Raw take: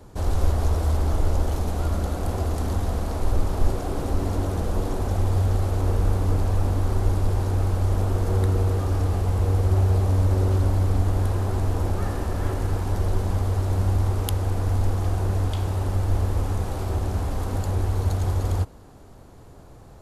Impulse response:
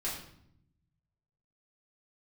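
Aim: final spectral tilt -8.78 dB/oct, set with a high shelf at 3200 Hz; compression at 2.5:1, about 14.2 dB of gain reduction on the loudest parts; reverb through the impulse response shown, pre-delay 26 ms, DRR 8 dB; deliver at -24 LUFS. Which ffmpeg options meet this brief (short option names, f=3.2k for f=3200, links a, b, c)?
-filter_complex "[0:a]highshelf=f=3.2k:g=-7,acompressor=threshold=-36dB:ratio=2.5,asplit=2[a][b];[1:a]atrim=start_sample=2205,adelay=26[c];[b][c]afir=irnorm=-1:irlink=0,volume=-11.5dB[d];[a][d]amix=inputs=2:normalize=0,volume=9.5dB"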